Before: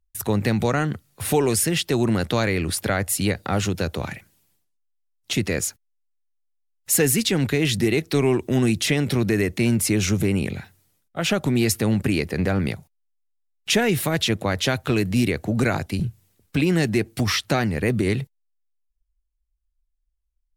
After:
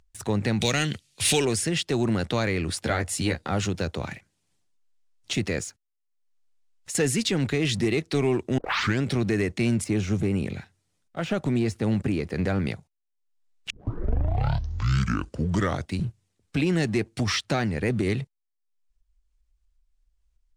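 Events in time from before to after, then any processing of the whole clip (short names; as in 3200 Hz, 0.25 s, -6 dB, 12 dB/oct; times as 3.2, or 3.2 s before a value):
0.61–1.45 resonant high shelf 1900 Hz +13.5 dB, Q 1.5
2.84–3.5 doubler 13 ms -4.5 dB
5.59–6.95 compressor, threshold -26 dBFS
8.58 tape start 0.45 s
9.84–12.43 de-esser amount 85%
13.7 tape start 2.33 s
whole clip: LPF 8900 Hz 24 dB/oct; upward compressor, threshold -42 dBFS; sample leveller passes 1; gain -7 dB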